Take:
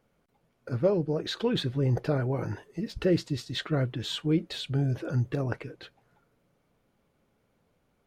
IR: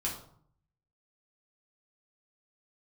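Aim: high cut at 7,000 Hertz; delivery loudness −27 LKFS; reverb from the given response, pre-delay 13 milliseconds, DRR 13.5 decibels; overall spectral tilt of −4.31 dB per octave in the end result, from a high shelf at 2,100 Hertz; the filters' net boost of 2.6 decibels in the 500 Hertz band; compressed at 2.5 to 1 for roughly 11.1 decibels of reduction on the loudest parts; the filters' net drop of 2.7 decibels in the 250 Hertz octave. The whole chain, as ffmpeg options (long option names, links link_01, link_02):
-filter_complex "[0:a]lowpass=7000,equalizer=frequency=250:width_type=o:gain=-6.5,equalizer=frequency=500:width_type=o:gain=4.5,highshelf=frequency=2100:gain=8.5,acompressor=threshold=-33dB:ratio=2.5,asplit=2[link_01][link_02];[1:a]atrim=start_sample=2205,adelay=13[link_03];[link_02][link_03]afir=irnorm=-1:irlink=0,volume=-17dB[link_04];[link_01][link_04]amix=inputs=2:normalize=0,volume=8dB"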